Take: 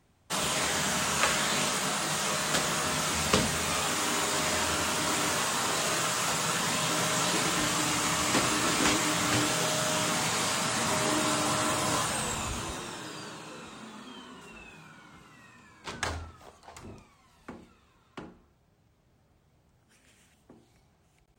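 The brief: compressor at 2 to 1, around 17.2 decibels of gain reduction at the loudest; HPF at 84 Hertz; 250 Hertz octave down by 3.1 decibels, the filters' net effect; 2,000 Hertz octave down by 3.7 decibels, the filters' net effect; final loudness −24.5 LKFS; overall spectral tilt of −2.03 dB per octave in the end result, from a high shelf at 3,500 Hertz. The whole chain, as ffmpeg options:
ffmpeg -i in.wav -af "highpass=84,equalizer=frequency=250:width_type=o:gain=-4,equalizer=frequency=2000:width_type=o:gain=-7,highshelf=frequency=3500:gain=7,acompressor=threshold=-54dB:ratio=2,volume=16.5dB" out.wav

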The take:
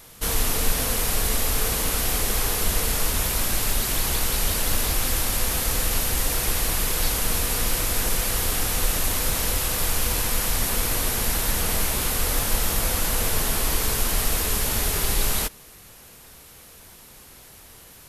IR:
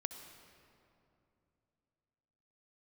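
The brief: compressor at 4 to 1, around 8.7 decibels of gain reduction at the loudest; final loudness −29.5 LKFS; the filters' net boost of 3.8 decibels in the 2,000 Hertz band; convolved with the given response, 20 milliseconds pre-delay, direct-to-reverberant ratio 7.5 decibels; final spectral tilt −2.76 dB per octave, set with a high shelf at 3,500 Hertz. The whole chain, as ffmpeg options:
-filter_complex "[0:a]equalizer=frequency=2000:width_type=o:gain=6.5,highshelf=frequency=3500:gain=-6,acompressor=threshold=-27dB:ratio=4,asplit=2[link_01][link_02];[1:a]atrim=start_sample=2205,adelay=20[link_03];[link_02][link_03]afir=irnorm=-1:irlink=0,volume=-6dB[link_04];[link_01][link_04]amix=inputs=2:normalize=0,volume=1dB"

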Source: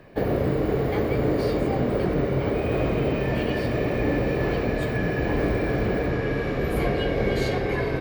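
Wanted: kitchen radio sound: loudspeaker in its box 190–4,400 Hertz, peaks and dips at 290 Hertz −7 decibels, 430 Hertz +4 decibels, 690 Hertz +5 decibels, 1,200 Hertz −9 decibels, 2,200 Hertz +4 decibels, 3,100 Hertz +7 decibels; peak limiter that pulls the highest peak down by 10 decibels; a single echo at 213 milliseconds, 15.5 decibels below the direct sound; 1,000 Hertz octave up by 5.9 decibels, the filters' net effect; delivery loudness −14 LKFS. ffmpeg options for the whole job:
ffmpeg -i in.wav -af "equalizer=frequency=1000:width_type=o:gain=6.5,alimiter=limit=-20dB:level=0:latency=1,highpass=190,equalizer=frequency=290:width_type=q:width=4:gain=-7,equalizer=frequency=430:width_type=q:width=4:gain=4,equalizer=frequency=690:width_type=q:width=4:gain=5,equalizer=frequency=1200:width_type=q:width=4:gain=-9,equalizer=frequency=2200:width_type=q:width=4:gain=4,equalizer=frequency=3100:width_type=q:width=4:gain=7,lowpass=frequency=4400:width=0.5412,lowpass=frequency=4400:width=1.3066,aecho=1:1:213:0.168,volume=14dB" out.wav

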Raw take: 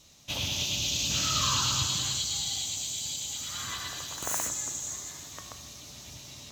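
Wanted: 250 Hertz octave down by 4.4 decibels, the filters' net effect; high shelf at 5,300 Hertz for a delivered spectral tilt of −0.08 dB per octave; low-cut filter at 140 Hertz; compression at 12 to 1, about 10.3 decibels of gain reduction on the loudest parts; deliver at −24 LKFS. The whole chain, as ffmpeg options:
ffmpeg -i in.wav -af "highpass=140,equalizer=frequency=250:width_type=o:gain=-5,highshelf=frequency=5300:gain=8.5,acompressor=threshold=-31dB:ratio=12,volume=8.5dB" out.wav

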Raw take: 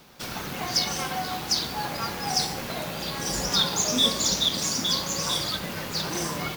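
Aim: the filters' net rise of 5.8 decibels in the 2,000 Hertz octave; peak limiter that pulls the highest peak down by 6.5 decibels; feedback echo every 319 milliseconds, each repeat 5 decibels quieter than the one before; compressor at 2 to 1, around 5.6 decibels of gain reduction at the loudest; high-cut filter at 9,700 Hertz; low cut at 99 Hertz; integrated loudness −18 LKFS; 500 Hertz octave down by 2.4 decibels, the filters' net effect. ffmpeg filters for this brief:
ffmpeg -i in.wav -af "highpass=99,lowpass=9700,equalizer=frequency=500:width_type=o:gain=-3.5,equalizer=frequency=2000:width_type=o:gain=7.5,acompressor=threshold=-26dB:ratio=2,alimiter=limit=-20.5dB:level=0:latency=1,aecho=1:1:319|638|957|1276|1595|1914|2233:0.562|0.315|0.176|0.0988|0.0553|0.031|0.0173,volume=9.5dB" out.wav

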